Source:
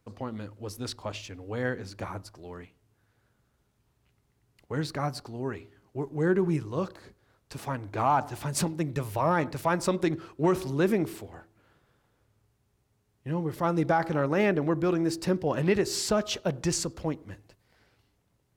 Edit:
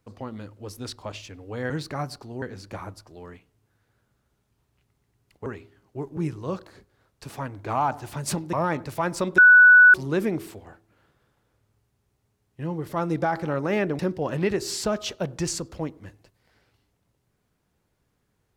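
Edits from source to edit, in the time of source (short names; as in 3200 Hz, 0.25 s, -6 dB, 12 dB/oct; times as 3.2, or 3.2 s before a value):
4.74–5.46 move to 1.7
6.17–6.46 cut
8.82–9.2 cut
10.05–10.61 bleep 1480 Hz -8.5 dBFS
14.66–15.24 cut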